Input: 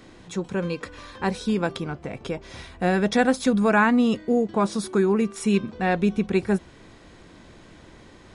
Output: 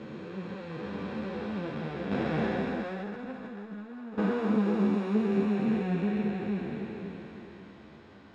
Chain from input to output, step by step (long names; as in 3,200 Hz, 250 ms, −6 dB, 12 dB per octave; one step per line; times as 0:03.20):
spectrum smeared in time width 1,400 ms
high-pass filter 81 Hz
0:02.11–0:04.18: compressor whose output falls as the input rises −32 dBFS, ratio −0.5
low-pass filter 3,400 Hz 12 dB per octave
string-ensemble chorus
level +2 dB